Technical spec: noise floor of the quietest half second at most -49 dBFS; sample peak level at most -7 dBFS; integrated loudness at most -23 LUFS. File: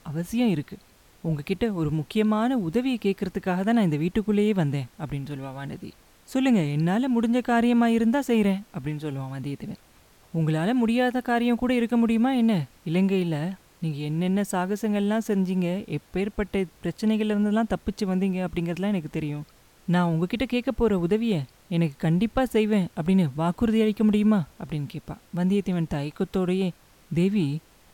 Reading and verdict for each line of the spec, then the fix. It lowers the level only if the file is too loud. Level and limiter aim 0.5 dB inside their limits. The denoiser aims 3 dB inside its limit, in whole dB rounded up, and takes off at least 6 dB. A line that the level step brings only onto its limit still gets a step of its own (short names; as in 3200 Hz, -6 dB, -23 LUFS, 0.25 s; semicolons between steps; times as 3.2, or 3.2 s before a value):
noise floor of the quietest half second -56 dBFS: OK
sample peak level -10.5 dBFS: OK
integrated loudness -25.0 LUFS: OK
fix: none